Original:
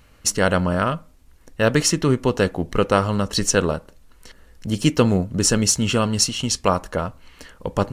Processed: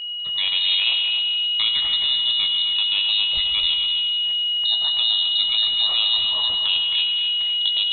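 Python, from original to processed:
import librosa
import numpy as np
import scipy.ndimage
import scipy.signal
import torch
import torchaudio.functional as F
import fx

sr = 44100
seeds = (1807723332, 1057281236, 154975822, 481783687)

p1 = fx.recorder_agc(x, sr, target_db=-6.5, rise_db_per_s=13.0, max_gain_db=30)
p2 = scipy.signal.sosfilt(scipy.signal.butter(2, 120.0, 'highpass', fs=sr, output='sos'), p1)
p3 = fx.peak_eq(p2, sr, hz=2500.0, db=-5.5, octaves=0.86)
p4 = fx.level_steps(p3, sr, step_db=11)
p5 = p4 + 10.0 ** (-27.0 / 20.0) * np.sin(2.0 * np.pi * 1000.0 * np.arange(len(p4)) / sr)
p6 = fx.doubler(p5, sr, ms=18.0, db=-8)
p7 = p6 + fx.echo_feedback(p6, sr, ms=260, feedback_pct=29, wet_db=-7.5, dry=0)
p8 = fx.rev_freeverb(p7, sr, rt60_s=1.9, hf_ratio=0.85, predelay_ms=50, drr_db=5.0)
p9 = fx.freq_invert(p8, sr, carrier_hz=3900)
y = p9 * librosa.db_to_amplitude(-2.5)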